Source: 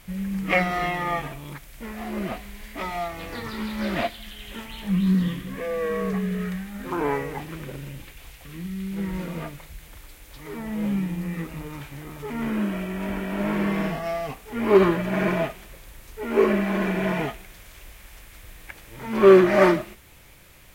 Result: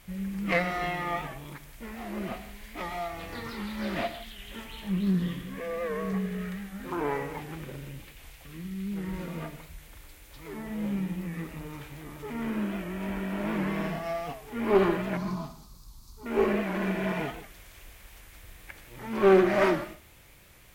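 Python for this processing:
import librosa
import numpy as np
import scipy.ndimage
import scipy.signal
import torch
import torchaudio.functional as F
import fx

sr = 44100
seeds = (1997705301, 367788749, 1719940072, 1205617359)

y = fx.diode_clip(x, sr, knee_db=-15.0)
y = fx.curve_eq(y, sr, hz=(220.0, 540.0, 1100.0, 1800.0, 3000.0, 4400.0, 9100.0), db=(0, -19, 0, -24, -16, 5, -4), at=(15.17, 16.26))
y = fx.rev_gated(y, sr, seeds[0], gate_ms=190, shape='flat', drr_db=10.0)
y = fx.record_warp(y, sr, rpm=78.0, depth_cents=100.0)
y = y * 10.0 ** (-4.5 / 20.0)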